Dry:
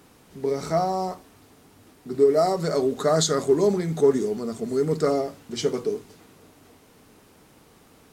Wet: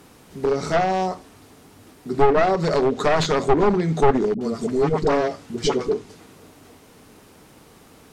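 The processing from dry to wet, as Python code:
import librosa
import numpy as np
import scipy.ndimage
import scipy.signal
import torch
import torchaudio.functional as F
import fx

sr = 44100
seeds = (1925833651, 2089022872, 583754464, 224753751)

y = np.minimum(x, 2.0 * 10.0 ** (-20.0 / 20.0) - x)
y = fx.dispersion(y, sr, late='highs', ms=68.0, hz=580.0, at=(4.34, 5.93))
y = fx.env_lowpass_down(y, sr, base_hz=2900.0, full_db=-18.0)
y = F.gain(torch.from_numpy(y), 5.0).numpy()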